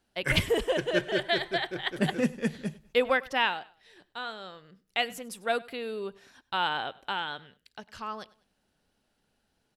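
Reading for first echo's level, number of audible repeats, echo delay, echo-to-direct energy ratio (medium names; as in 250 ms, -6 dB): -21.5 dB, 2, 99 ms, -21.0 dB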